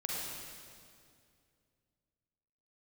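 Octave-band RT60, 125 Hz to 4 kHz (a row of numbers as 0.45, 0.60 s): 3.1, 2.7, 2.5, 2.1, 2.0, 2.0 s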